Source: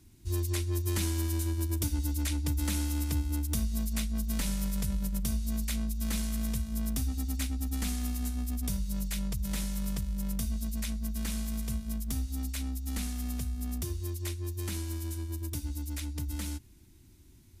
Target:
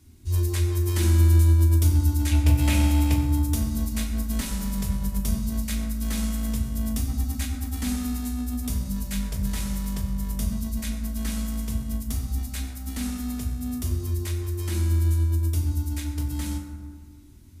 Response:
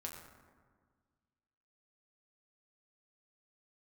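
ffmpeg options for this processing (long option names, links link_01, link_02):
-filter_complex "[0:a]asettb=1/sr,asplit=3[link_01][link_02][link_03];[link_01]atrim=end=2.314[link_04];[link_02]atrim=start=2.31:end=3.14,asetpts=PTS-STARTPTS,afade=type=in:duration=0.004:curve=qsin,afade=type=out:start_time=0.826:duration=0.004:curve=qsin,equalizer=frequency=100:width_type=o:width=0.67:gain=12,equalizer=frequency=630:width_type=o:width=0.67:gain=11,equalizer=frequency=2500:width_type=o:width=0.67:gain=12[link_05];[link_03]atrim=start=3.136[link_06];[link_04][link_05]acrossfade=duration=0.004:curve1=hsin:curve2=qsin[link_07];[link_07][link_06]acrossfade=duration=0.004:curve1=qsin:curve2=hsin[link_08];[1:a]atrim=start_sample=2205[link_09];[link_08][link_09]afir=irnorm=-1:irlink=0,volume=7dB"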